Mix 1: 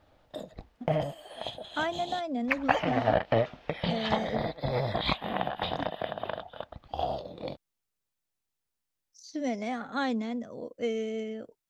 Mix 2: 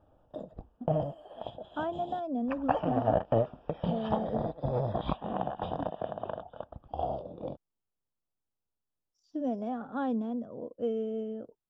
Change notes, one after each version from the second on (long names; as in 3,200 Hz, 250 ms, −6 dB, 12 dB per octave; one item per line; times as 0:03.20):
master: add moving average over 21 samples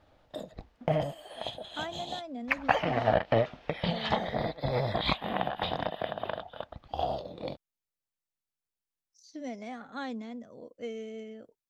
speech −7.5 dB
master: remove moving average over 21 samples